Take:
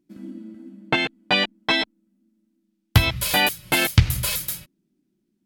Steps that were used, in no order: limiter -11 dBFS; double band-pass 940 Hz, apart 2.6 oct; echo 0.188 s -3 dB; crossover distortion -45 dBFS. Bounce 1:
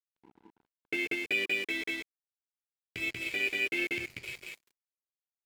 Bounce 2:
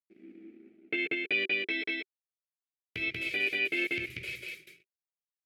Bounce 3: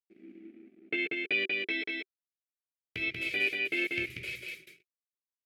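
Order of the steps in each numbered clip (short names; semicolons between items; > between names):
echo > limiter > double band-pass > crossover distortion; crossover distortion > echo > limiter > double band-pass; limiter > echo > crossover distortion > double band-pass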